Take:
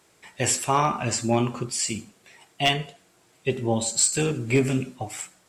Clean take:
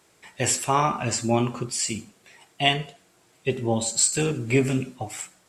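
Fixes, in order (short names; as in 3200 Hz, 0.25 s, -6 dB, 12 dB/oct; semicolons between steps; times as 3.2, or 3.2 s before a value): clip repair -10.5 dBFS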